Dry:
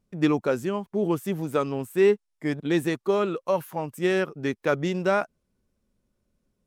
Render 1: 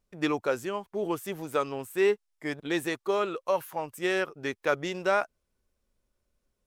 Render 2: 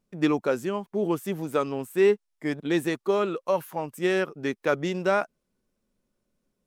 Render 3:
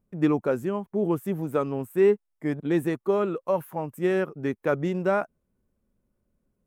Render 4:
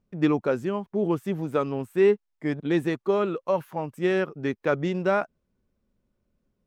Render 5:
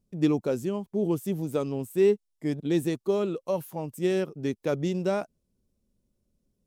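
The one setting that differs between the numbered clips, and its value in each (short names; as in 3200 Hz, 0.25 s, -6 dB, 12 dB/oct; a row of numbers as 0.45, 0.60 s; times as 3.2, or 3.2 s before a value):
bell, frequency: 180, 63, 4700, 12000, 1500 Hz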